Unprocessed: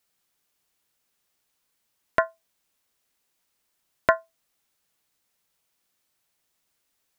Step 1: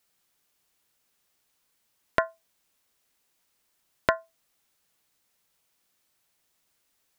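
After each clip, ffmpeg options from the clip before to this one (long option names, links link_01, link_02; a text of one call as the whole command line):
ffmpeg -i in.wav -af "acompressor=threshold=-21dB:ratio=6,volume=2dB" out.wav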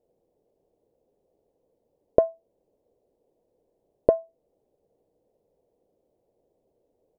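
ffmpeg -i in.wav -af "alimiter=limit=-8dB:level=0:latency=1:release=455,firequalizer=gain_entry='entry(200,0);entry(480,13);entry(1300,-30)':delay=0.05:min_phase=1,volume=9dB" out.wav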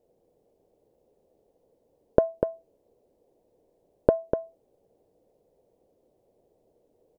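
ffmpeg -i in.wav -filter_complex "[0:a]acompressor=threshold=-18dB:ratio=6,asplit=2[link_01][link_02];[link_02]aecho=0:1:246:0.447[link_03];[link_01][link_03]amix=inputs=2:normalize=0,volume=4dB" out.wav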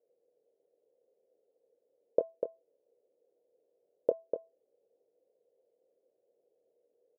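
ffmpeg -i in.wav -filter_complex "[0:a]bandpass=frequency=490:width_type=q:width=3.9:csg=0,asplit=2[link_01][link_02];[link_02]adelay=25,volume=-11dB[link_03];[link_01][link_03]amix=inputs=2:normalize=0,volume=-4.5dB" out.wav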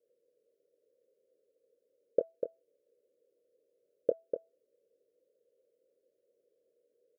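ffmpeg -i in.wav -af "asuperstop=centerf=880:order=8:qfactor=1.4" out.wav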